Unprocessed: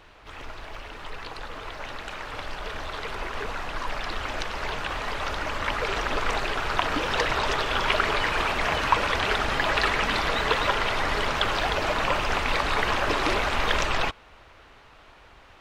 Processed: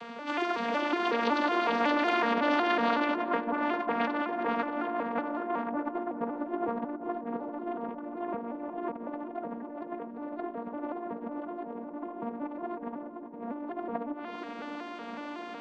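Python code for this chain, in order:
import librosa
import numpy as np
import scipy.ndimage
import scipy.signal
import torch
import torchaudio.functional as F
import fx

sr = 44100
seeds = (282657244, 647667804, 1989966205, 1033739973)

p1 = fx.vocoder_arp(x, sr, chord='major triad', root=58, every_ms=185)
p2 = fx.env_lowpass_down(p1, sr, base_hz=610.0, full_db=-26.5)
p3 = fx.over_compress(p2, sr, threshold_db=-38.0, ratio=-0.5)
p4 = p3 + fx.echo_filtered(p3, sr, ms=398, feedback_pct=84, hz=1100.0, wet_db=-11.5, dry=0)
y = p4 * librosa.db_to_amplitude(6.0)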